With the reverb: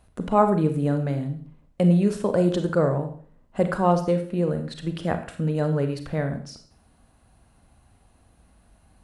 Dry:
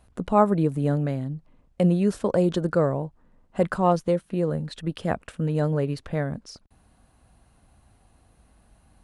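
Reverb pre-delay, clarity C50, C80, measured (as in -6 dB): 32 ms, 10.0 dB, 13.5 dB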